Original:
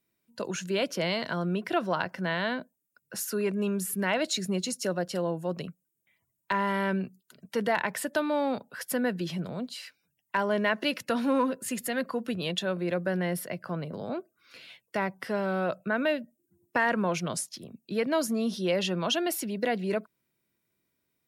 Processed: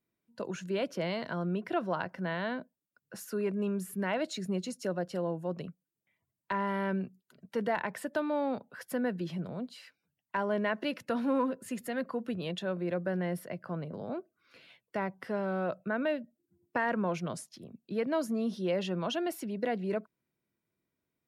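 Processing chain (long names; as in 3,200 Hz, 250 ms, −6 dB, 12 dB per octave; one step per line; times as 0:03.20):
high-shelf EQ 2,400 Hz −10 dB
level −3 dB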